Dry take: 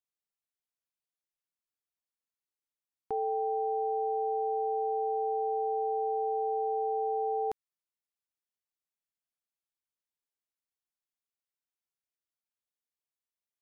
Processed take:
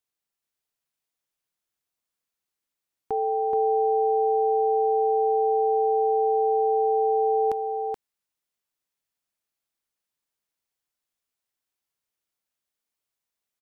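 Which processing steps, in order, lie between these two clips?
delay 427 ms -3.5 dB; trim +6 dB

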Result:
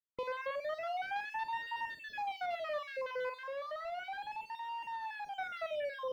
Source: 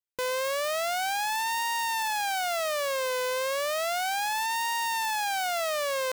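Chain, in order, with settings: random holes in the spectrogram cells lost 43%; 3.35–5.36 s: hard clipper -32.5 dBFS, distortion -12 dB; distance through air 390 m; on a send: flutter echo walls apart 7.7 m, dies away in 0.22 s; on the sum: trim -4.5 dB

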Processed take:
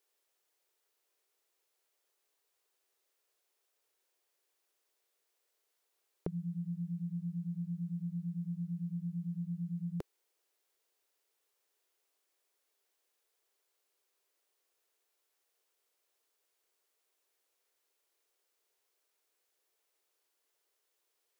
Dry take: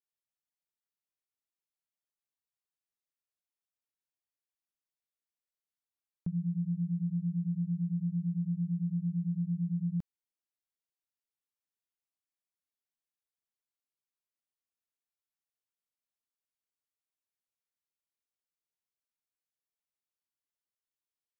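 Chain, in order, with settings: resonant low shelf 280 Hz -12.5 dB, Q 3; trim +13.5 dB

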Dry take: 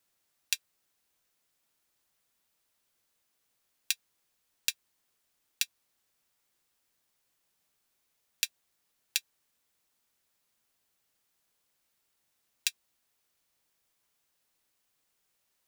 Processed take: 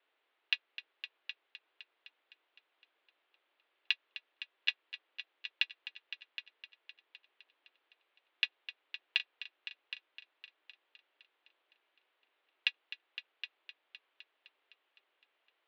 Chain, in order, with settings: mistuned SSB +100 Hz 220–3300 Hz; multi-head delay 256 ms, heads all three, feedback 42%, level -14 dB; trim +5 dB

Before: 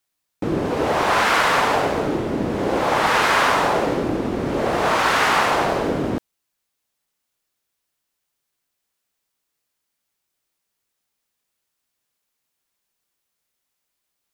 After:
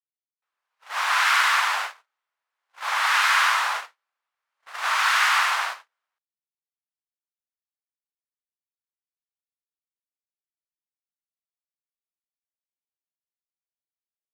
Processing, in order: high-pass 1.1 kHz 24 dB/octave; gate -27 dBFS, range -48 dB

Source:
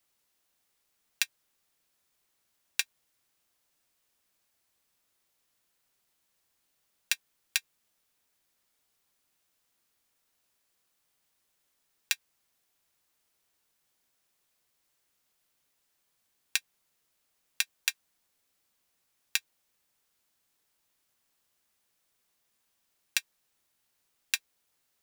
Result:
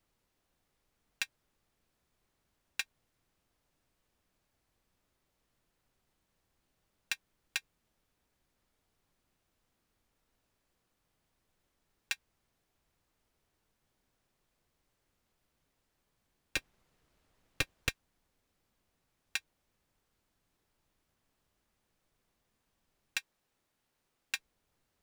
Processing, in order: 16.56–17.89 s: square wave that keeps the level; tilt EQ -3 dB/octave; saturation -21.5 dBFS, distortion -9 dB; 23.18–24.35 s: bass shelf 140 Hz -10.5 dB; trim +1.5 dB

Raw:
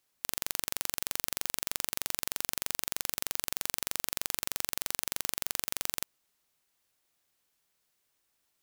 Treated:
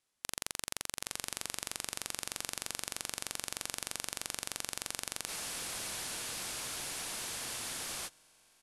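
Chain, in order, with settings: resampled via 32 kHz; on a send: echo that smears into a reverb 982 ms, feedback 44%, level -13 dB; on the sum: formant shift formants -4 st; spectral freeze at 5.30 s, 2.77 s; trim -4 dB

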